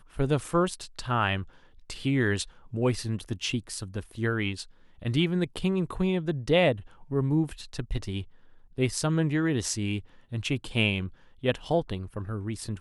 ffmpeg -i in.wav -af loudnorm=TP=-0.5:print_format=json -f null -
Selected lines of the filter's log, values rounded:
"input_i" : "-29.2",
"input_tp" : "-10.3",
"input_lra" : "2.7",
"input_thresh" : "-39.5",